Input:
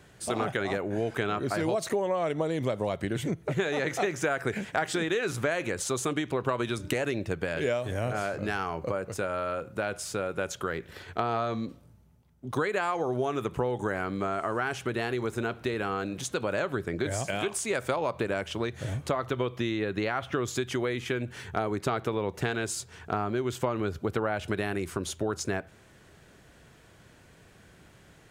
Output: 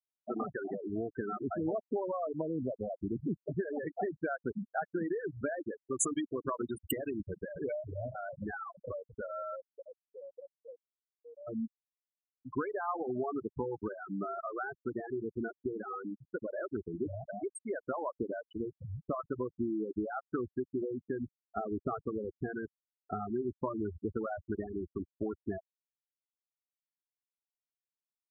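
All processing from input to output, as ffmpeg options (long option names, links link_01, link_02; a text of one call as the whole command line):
ffmpeg -i in.wav -filter_complex "[0:a]asettb=1/sr,asplit=3[link_01][link_02][link_03];[link_01]atrim=end=6.004[link_04];[link_02]atrim=start=6:end=8.71,asetpts=PTS-STARTPTS,afade=type=in:duration=0.004:curve=qsin,afade=type=out:start_time=2.706:duration=0.004:curve=qsin,aemphasis=mode=production:type=75fm,aecho=1:1:274:0.266,atrim=end_sample=119511[link_05];[link_03]atrim=start=8.706[link_06];[link_04][link_05]acrossfade=duration=0.004:curve1=hsin:curve2=qsin[link_07];[link_07][link_06]acrossfade=duration=0.004:curve1=qsin:curve2=hsin,asettb=1/sr,asplit=3[link_08][link_09][link_10];[link_08]atrim=end=9.584[link_11];[link_09]atrim=start=9.58:end=11.47,asetpts=PTS-STARTPTS,afade=type=in:duration=0.004:curve=qsin,afade=type=out:start_time=1.886:duration=0.004:curve=qsin,asplit=3[link_12][link_13][link_14];[link_12]bandpass=frequency=530:width_type=q:width=8,volume=0dB[link_15];[link_13]bandpass=frequency=1840:width_type=q:width=8,volume=-6dB[link_16];[link_14]bandpass=frequency=2480:width_type=q:width=8,volume=-9dB[link_17];[link_15][link_16][link_17]amix=inputs=3:normalize=0,aecho=1:1:1.9:0.86,atrim=end_sample=83349,acompressor=threshold=-33dB:ratio=16:attack=3.2:release=140:knee=1:detection=peak[link_18];[link_10]atrim=start=11.466[link_19];[link_11][link_18]acrossfade=duration=0.004:curve1=hsin:curve2=qsin[link_20];[link_20][link_19]acrossfade=duration=0.004:curve1=qsin:curve2=hsin,afftfilt=real='re*gte(hypot(re,im),0.126)':imag='im*gte(hypot(re,im),0.126)':win_size=1024:overlap=0.75,equalizer=frequency=125:width_type=o:width=1:gain=-10,equalizer=frequency=250:width_type=o:width=1:gain=3,equalizer=frequency=500:width_type=o:width=1:gain=-8,equalizer=frequency=2000:width_type=o:width=1:gain=-10" out.wav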